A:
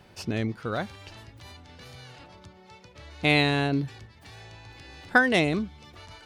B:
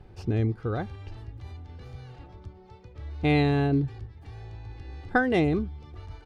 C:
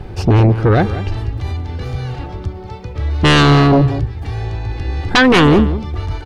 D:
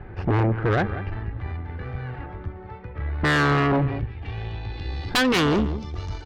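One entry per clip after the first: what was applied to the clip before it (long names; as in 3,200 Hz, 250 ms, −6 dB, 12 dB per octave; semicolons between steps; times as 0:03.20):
spectral tilt −3.5 dB per octave; comb filter 2.5 ms, depth 42%; level −4.5 dB
sine wavefolder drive 14 dB, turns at −8 dBFS; slap from a distant wall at 32 metres, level −13 dB; level +2 dB
low-pass filter sweep 1,800 Hz → 6,100 Hz, 0:03.55–0:05.55; tube saturation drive 9 dB, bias 0.6; level −6.5 dB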